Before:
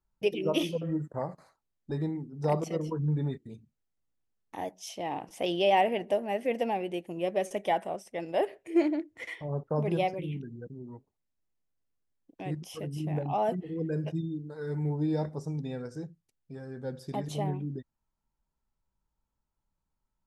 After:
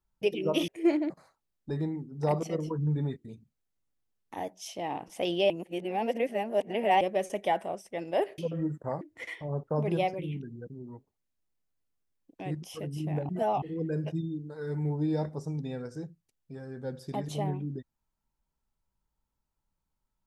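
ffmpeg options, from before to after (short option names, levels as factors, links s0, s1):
-filter_complex "[0:a]asplit=9[s0][s1][s2][s3][s4][s5][s6][s7][s8];[s0]atrim=end=0.682[s9];[s1]atrim=start=8.588:end=9.012[s10];[s2]atrim=start=1.308:end=5.712[s11];[s3]atrim=start=5.708:end=7.222,asetpts=PTS-STARTPTS,areverse[s12];[s4]atrim=start=7.218:end=8.592[s13];[s5]atrim=start=0.678:end=1.312[s14];[s6]atrim=start=9.008:end=13.292[s15];[s7]atrim=start=13.288:end=13.622,asetpts=PTS-STARTPTS,areverse[s16];[s8]atrim=start=13.618[s17];[s9][s10]acrossfade=d=0.004:c1=hsin:c2=hsin[s18];[s18][s11]acrossfade=d=0.004:c1=hsin:c2=hsin[s19];[s19][s12]acrossfade=d=0.004:c1=hsin:c2=hsin[s20];[s20][s13]acrossfade=d=0.004:c1=hsin:c2=hsin[s21];[s21][s14]acrossfade=d=0.004:c1=hsin:c2=hsin[s22];[s22][s15]acrossfade=d=0.004:c1=hsin:c2=hsin[s23];[s23][s16]acrossfade=d=0.004:c1=hsin:c2=hsin[s24];[s24][s17]acrossfade=d=0.004:c1=hsin:c2=hsin"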